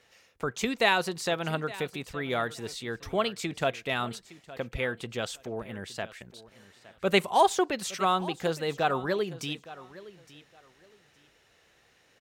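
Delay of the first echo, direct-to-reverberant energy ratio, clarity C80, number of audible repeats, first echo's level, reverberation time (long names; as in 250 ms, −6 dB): 864 ms, no reverb audible, no reverb audible, 2, −18.0 dB, no reverb audible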